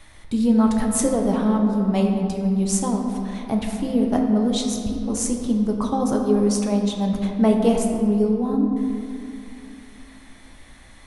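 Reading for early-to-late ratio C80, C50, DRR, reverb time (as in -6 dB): 4.5 dB, 3.5 dB, 1.0 dB, 2.5 s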